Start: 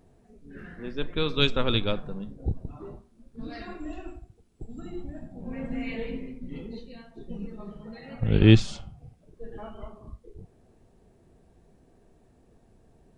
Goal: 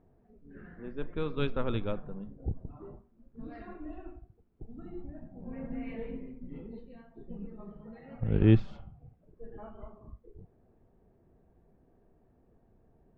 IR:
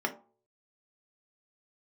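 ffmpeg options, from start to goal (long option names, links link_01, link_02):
-af "lowpass=1600,volume=-5.5dB"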